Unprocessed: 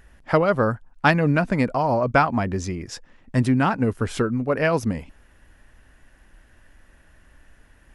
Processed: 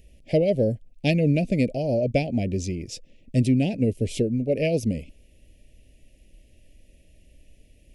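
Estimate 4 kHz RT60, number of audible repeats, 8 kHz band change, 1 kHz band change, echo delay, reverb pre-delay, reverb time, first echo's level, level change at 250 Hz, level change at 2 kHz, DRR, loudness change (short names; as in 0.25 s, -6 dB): none, none, -0.5 dB, -17.0 dB, none, none, none, none, -0.5 dB, -11.0 dB, none, -2.0 dB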